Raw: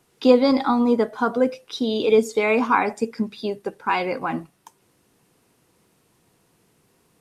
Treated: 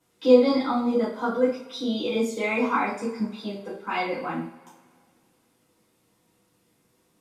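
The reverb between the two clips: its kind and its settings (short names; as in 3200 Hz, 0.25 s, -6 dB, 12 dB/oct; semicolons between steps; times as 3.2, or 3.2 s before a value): two-slope reverb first 0.43 s, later 2.1 s, from -22 dB, DRR -8 dB; gain -13 dB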